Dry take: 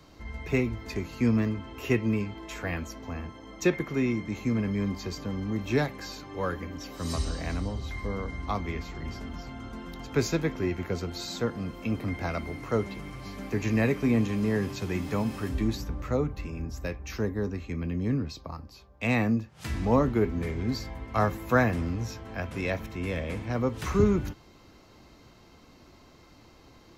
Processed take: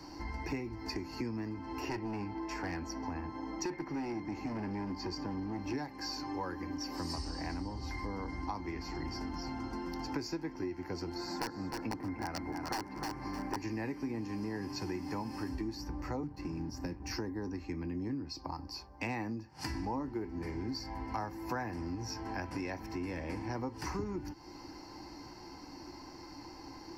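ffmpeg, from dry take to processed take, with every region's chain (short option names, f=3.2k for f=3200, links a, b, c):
-filter_complex "[0:a]asettb=1/sr,asplit=3[a][b][c];[a]atrim=end=1.804[d];[b]atrim=start=1.8:end=5.74,asetpts=PTS-STARTPTS,afade=t=in:d=0.004:c=qsin,afade=t=out:st=3.936:d=0.004:c=qsin,aemphasis=mode=reproduction:type=cd,volume=28dB,asoftclip=hard,volume=-28dB[e];[c]atrim=start=5.736[f];[d][e]acrossfade=d=0.004:c1=hsin:c2=qsin[g];[g][f]acrossfade=d=0.004:c1=qsin:c2=hsin,asettb=1/sr,asplit=3[h][i][j];[h]atrim=end=11.144[k];[i]atrim=start=11.14:end=13.56,asetpts=PTS-STARTPTS,afade=t=in:d=0.004:c=qsin,afade=t=out:st=2.416:d=0.004:c=qsin,highshelf=f=2.4k:t=q:w=1.5:g=-8.5,aeval=exprs='(mod(10*val(0)+1,2)-1)/10':c=same,aecho=1:1:306|612|918:0.355|0.0781|0.0172,atrim=end_sample=106722[l];[j]atrim=start=13.556[m];[k][l]acrossfade=d=0.004:c1=hsin:c2=qsin[n];[n][m]acrossfade=d=0.004:c1=qsin:c2=hsin,asettb=1/sr,asplit=3[o][p][q];[o]atrim=end=16.234[r];[p]atrim=start=16.23:end=17.11,asetpts=PTS-STARTPTS,afade=t=in:d=0.004:c=qsin,afade=t=out:st=0.876:d=0.004:c=qsin,equalizer=f=160:w=0.62:g=8,acrossover=split=110|330|5600[s][t][u][v];[s]acompressor=threshold=-40dB:ratio=3[w];[t]acompressor=threshold=-28dB:ratio=3[x];[u]acompressor=threshold=-41dB:ratio=3[y];[v]acompressor=threshold=-55dB:ratio=3[z];[w][x][y][z]amix=inputs=4:normalize=0,aeval=exprs='sgn(val(0))*max(abs(val(0))-0.00316,0)':c=same[aa];[q]atrim=start=17.106[ab];[r][aa]acrossfade=d=0.004:c1=hsin:c2=qsin[ac];[ac][ab]acrossfade=d=0.004:c1=qsin:c2=hsin,superequalizer=6b=3.16:9b=3.55:11b=1.58:13b=0.447:14b=3.16,acompressor=threshold=-36dB:ratio=6"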